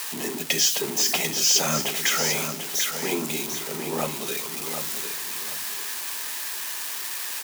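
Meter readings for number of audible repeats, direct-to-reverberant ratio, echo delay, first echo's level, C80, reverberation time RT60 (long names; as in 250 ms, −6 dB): 3, no reverb audible, 744 ms, −7.5 dB, no reverb audible, no reverb audible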